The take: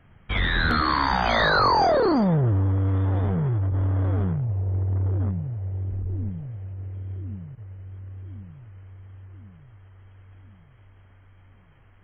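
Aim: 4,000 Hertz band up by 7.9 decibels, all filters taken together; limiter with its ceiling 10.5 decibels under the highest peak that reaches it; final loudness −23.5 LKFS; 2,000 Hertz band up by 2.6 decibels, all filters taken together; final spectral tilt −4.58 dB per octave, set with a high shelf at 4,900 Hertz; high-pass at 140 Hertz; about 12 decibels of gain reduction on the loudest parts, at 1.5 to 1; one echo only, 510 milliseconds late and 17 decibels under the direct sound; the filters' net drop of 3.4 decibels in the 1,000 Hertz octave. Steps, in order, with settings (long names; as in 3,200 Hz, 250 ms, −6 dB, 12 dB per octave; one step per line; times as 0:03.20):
high-pass filter 140 Hz
parametric band 1,000 Hz −6 dB
parametric band 2,000 Hz +4 dB
parametric band 4,000 Hz +6.5 dB
high-shelf EQ 4,900 Hz +3.5 dB
downward compressor 1.5 to 1, threshold −50 dBFS
brickwall limiter −31 dBFS
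single-tap delay 510 ms −17 dB
level +16.5 dB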